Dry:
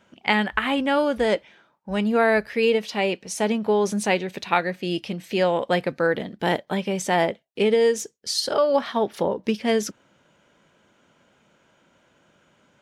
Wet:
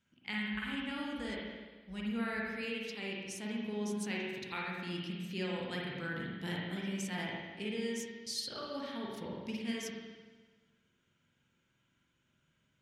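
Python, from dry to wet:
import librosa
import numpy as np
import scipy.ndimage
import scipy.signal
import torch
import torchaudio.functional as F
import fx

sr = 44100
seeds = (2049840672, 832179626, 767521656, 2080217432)

y = fx.tone_stack(x, sr, knobs='6-0-2')
y = fx.rider(y, sr, range_db=10, speed_s=2.0)
y = fx.rev_spring(y, sr, rt60_s=1.4, pass_ms=(43, 51), chirp_ms=40, drr_db=-3.5)
y = y * librosa.db_to_amplitude(1.0)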